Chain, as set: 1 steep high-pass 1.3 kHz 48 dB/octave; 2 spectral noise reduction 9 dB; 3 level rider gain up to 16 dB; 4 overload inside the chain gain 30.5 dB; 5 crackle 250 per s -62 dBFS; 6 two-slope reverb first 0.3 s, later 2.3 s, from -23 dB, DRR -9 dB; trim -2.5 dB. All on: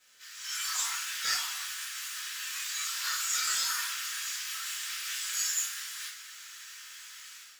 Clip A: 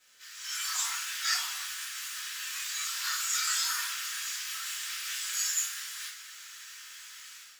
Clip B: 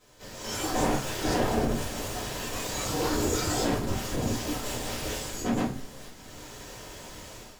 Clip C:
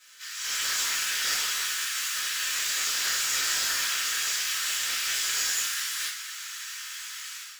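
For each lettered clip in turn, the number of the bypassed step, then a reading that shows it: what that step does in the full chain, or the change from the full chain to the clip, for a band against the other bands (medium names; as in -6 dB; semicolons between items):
4, distortion -21 dB; 1, 1 kHz band +12.0 dB; 2, 1 kHz band -3.0 dB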